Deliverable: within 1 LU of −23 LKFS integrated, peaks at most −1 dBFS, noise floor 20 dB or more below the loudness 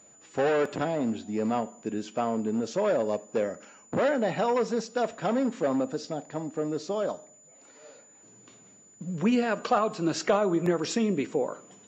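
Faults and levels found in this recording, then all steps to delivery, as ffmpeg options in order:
interfering tone 7,000 Hz; level of the tone −54 dBFS; integrated loudness −28.5 LKFS; sample peak −13.0 dBFS; target loudness −23.0 LKFS
→ -af "bandreject=frequency=7000:width=30"
-af "volume=5.5dB"

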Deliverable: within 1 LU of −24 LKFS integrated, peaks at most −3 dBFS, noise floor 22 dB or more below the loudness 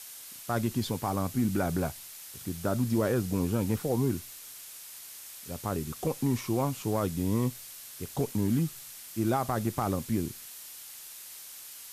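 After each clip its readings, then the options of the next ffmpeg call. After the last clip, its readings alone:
background noise floor −46 dBFS; target noise floor −53 dBFS; integrated loudness −31.0 LKFS; sample peak −18.0 dBFS; target loudness −24.0 LKFS
→ -af "afftdn=noise_reduction=7:noise_floor=-46"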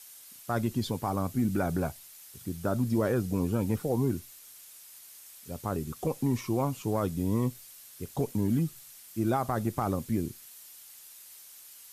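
background noise floor −51 dBFS; target noise floor −53 dBFS
→ -af "afftdn=noise_reduction=6:noise_floor=-51"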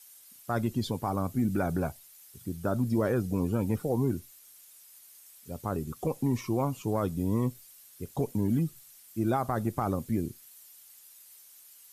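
background noise floor −55 dBFS; integrated loudness −31.0 LKFS; sample peak −18.0 dBFS; target loudness −24.0 LKFS
→ -af "volume=7dB"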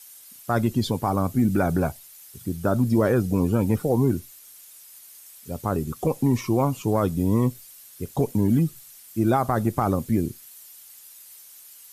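integrated loudness −24.0 LKFS; sample peak −11.0 dBFS; background noise floor −48 dBFS

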